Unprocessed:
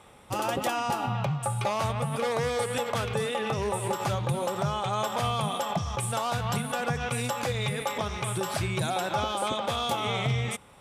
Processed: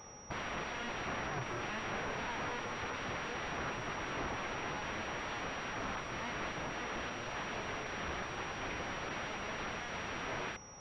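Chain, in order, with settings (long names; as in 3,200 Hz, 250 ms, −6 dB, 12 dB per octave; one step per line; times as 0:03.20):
brickwall limiter −22.5 dBFS, peak gain reduction 4.5 dB
wrap-around overflow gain 31.5 dB
switching amplifier with a slow clock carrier 5,700 Hz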